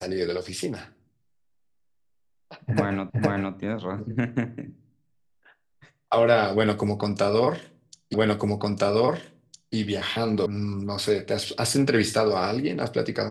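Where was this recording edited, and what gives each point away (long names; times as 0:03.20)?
0:03.10: the same again, the last 0.46 s
0:08.14: the same again, the last 1.61 s
0:10.46: cut off before it has died away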